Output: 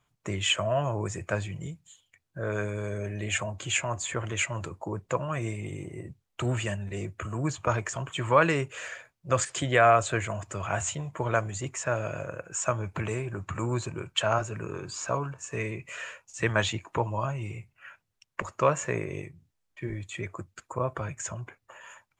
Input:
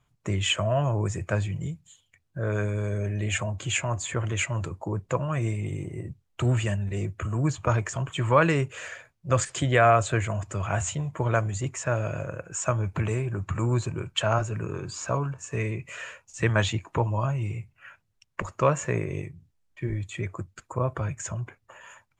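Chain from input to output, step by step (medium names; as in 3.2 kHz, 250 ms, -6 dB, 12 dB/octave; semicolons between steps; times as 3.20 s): bass shelf 200 Hz -8.5 dB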